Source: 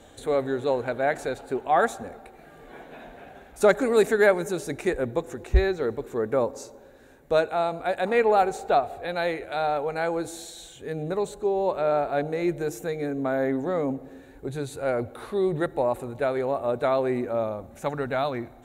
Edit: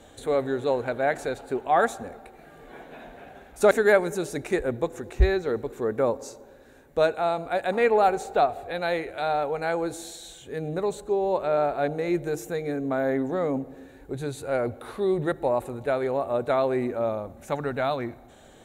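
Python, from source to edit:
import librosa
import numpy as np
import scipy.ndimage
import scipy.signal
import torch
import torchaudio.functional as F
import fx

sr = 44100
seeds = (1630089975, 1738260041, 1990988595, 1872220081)

y = fx.edit(x, sr, fx.cut(start_s=3.71, length_s=0.34), tone=tone)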